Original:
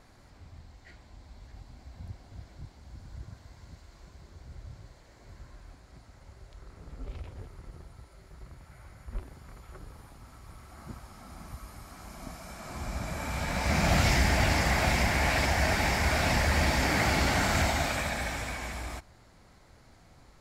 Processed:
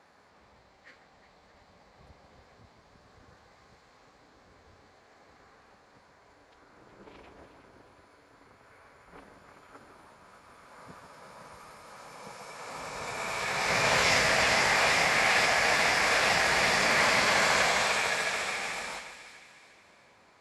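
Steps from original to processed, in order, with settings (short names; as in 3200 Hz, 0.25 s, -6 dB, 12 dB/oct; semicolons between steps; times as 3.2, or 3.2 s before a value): weighting filter A; formant-preserving pitch shift -5 st; split-band echo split 1800 Hz, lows 0.143 s, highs 0.362 s, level -9 dB; mismatched tape noise reduction decoder only; gain +4 dB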